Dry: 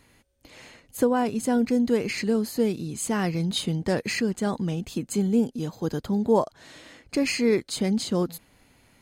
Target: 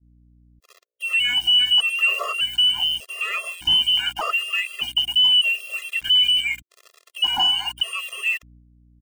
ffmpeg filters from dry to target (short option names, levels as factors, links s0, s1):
-filter_complex "[0:a]asplit=2[s0][s1];[s1]asoftclip=type=tanh:threshold=0.0794,volume=0.355[s2];[s0][s2]amix=inputs=2:normalize=0,acrossover=split=360[s3][s4];[s4]adelay=110[s5];[s3][s5]amix=inputs=2:normalize=0,lowpass=f=2700:t=q:w=0.5098,lowpass=f=2700:t=q:w=0.6013,lowpass=f=2700:t=q:w=0.9,lowpass=f=2700:t=q:w=2.563,afreqshift=-3200,aeval=exprs='val(0)*gte(abs(val(0)),0.0112)':c=same,alimiter=limit=0.126:level=0:latency=1:release=41,dynaudnorm=f=240:g=5:m=3.55,aeval=exprs='val(0)+0.00501*(sin(2*PI*60*n/s)+sin(2*PI*2*60*n/s)/2+sin(2*PI*3*60*n/s)/3+sin(2*PI*4*60*n/s)/4+sin(2*PI*5*60*n/s)/5)':c=same,acontrast=52,agate=range=0.0224:threshold=0.0158:ratio=3:detection=peak,afftfilt=real='re*gt(sin(2*PI*0.83*pts/sr)*(1-2*mod(floor(b*sr/1024/350),2)),0)':imag='im*gt(sin(2*PI*0.83*pts/sr)*(1-2*mod(floor(b*sr/1024/350),2)),0)':win_size=1024:overlap=0.75,volume=0.422"